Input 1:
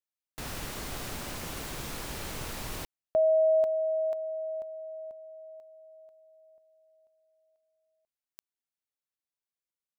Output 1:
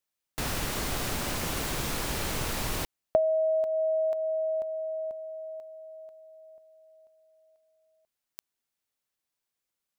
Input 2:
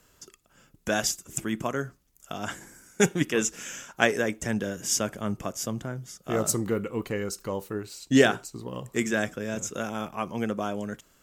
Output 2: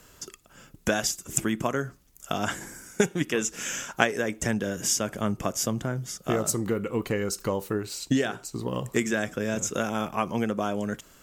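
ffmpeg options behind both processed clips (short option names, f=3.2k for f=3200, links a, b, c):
-af "acompressor=threshold=-33dB:ratio=6:attack=51:release=454:knee=6:detection=peak,volume=7.5dB"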